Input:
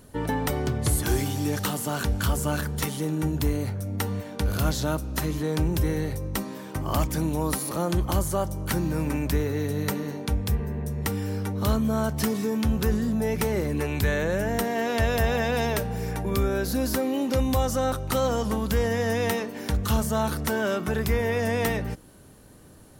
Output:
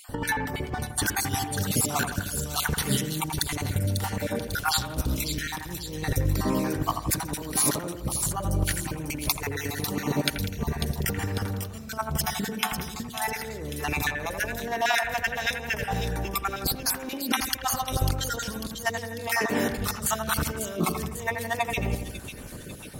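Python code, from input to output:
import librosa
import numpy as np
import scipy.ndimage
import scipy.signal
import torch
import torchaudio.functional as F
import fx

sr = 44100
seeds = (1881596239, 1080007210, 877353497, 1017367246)

y = fx.spec_dropout(x, sr, seeds[0], share_pct=36)
y = fx.over_compress(y, sr, threshold_db=-33.0, ratio=-0.5)
y = fx.echo_split(y, sr, split_hz=2700.0, low_ms=83, high_ms=546, feedback_pct=52, wet_db=-7.0)
y = y * librosa.db_to_amplitude(4.5)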